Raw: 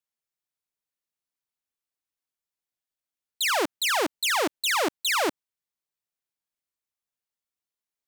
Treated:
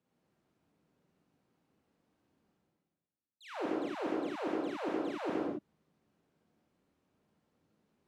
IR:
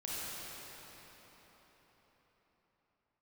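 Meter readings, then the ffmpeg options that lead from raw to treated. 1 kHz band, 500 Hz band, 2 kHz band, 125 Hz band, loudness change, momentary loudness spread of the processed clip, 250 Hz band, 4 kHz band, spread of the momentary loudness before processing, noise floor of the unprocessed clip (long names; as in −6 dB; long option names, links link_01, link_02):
−13.0 dB, −6.5 dB, −19.5 dB, can't be measured, −12.5 dB, 8 LU, −1.0 dB, −25.5 dB, 1 LU, below −85 dBFS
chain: -filter_complex "[0:a]areverse,acompressor=mode=upward:threshold=-32dB:ratio=2.5,areverse,bandpass=frequency=210:width_type=q:width=1.2:csg=0[link_01];[1:a]atrim=start_sample=2205,afade=type=out:start_time=0.34:duration=0.01,atrim=end_sample=15435[link_02];[link_01][link_02]afir=irnorm=-1:irlink=0"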